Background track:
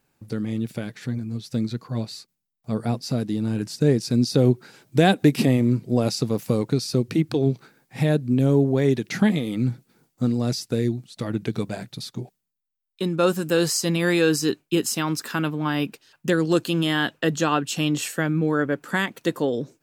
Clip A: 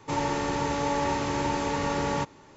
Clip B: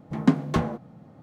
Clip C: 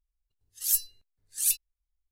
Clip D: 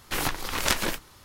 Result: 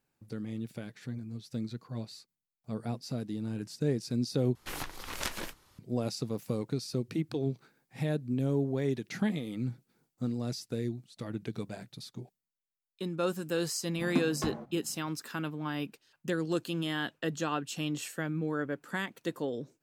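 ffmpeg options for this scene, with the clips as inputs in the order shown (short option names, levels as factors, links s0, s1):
-filter_complex "[0:a]volume=0.282[s0];[4:a]aresample=32000,aresample=44100[s1];[s0]asplit=2[s2][s3];[s2]atrim=end=4.554[s4];[s1]atrim=end=1.24,asetpts=PTS-STARTPTS,volume=0.282[s5];[s3]atrim=start=5.786[s6];[2:a]atrim=end=1.22,asetpts=PTS-STARTPTS,volume=0.299,afade=t=in:d=0.004:c=hsin,afade=t=out:st=1.216:d=0.004:c=hsin,adelay=13880[s7];[s4][s5]acrossfade=d=0.004:c1=hsin:c2=hsin[s8];[s8][s6]acrossfade=d=0.004:c1=hsin:c2=hsin[s9];[s9][s7]amix=inputs=2:normalize=0"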